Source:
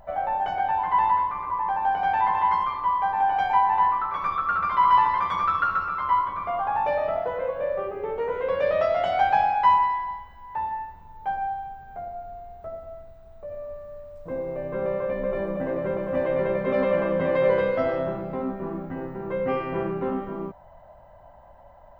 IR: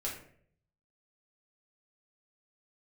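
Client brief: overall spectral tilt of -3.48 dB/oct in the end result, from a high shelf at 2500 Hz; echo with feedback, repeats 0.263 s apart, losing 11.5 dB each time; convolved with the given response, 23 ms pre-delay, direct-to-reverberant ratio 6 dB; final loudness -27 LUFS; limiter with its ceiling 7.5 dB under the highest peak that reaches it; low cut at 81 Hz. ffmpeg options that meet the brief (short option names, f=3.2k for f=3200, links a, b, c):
-filter_complex "[0:a]highpass=81,highshelf=f=2.5k:g=7,alimiter=limit=-15dB:level=0:latency=1,aecho=1:1:263|526|789:0.266|0.0718|0.0194,asplit=2[a][b];[1:a]atrim=start_sample=2205,adelay=23[c];[b][c]afir=irnorm=-1:irlink=0,volume=-8dB[d];[a][d]amix=inputs=2:normalize=0,volume=-4dB"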